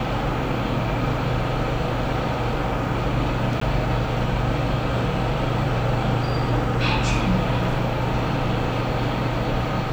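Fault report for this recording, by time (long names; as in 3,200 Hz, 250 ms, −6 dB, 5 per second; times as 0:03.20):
0:03.60–0:03.61: drop-out 14 ms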